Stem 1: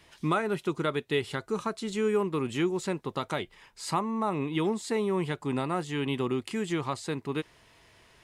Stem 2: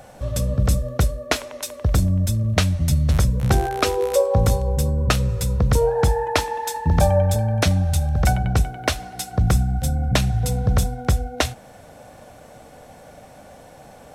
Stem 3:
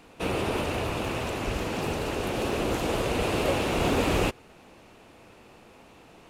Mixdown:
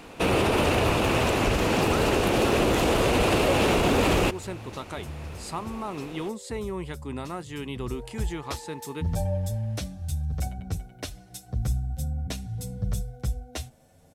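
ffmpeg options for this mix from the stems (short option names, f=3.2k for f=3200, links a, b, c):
-filter_complex "[0:a]acontrast=72,highshelf=f=9k:g=7,adelay=1600,volume=-11.5dB[a];[1:a]equalizer=f=1.2k:w=0.43:g=-9.5,asplit=2[b][c];[c]adelay=8.5,afreqshift=0.58[d];[b][d]amix=inputs=2:normalize=1,adelay=2150,volume=-7dB,afade=t=in:st=7.83:d=0.51:silence=0.251189[e];[2:a]acontrast=47,volume=2dB[f];[a][e][f]amix=inputs=3:normalize=0,alimiter=limit=-13.5dB:level=0:latency=1:release=36"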